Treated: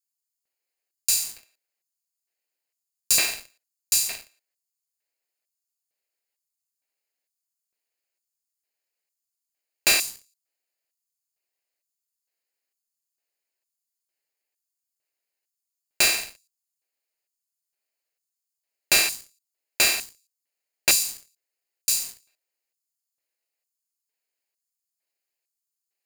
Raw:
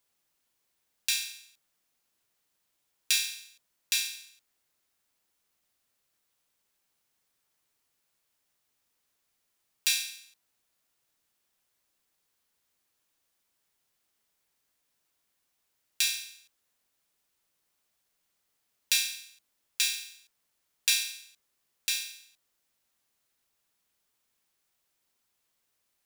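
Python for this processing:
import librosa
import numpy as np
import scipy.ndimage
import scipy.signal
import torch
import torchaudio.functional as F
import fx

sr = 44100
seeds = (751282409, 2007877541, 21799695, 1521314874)

y = fx.lower_of_two(x, sr, delay_ms=0.43)
y = fx.filter_lfo_highpass(y, sr, shape='square', hz=1.1, low_hz=540.0, high_hz=6200.0, q=1.1)
y = fx.leveller(y, sr, passes=3)
y = fx.low_shelf(y, sr, hz=360.0, db=3.0)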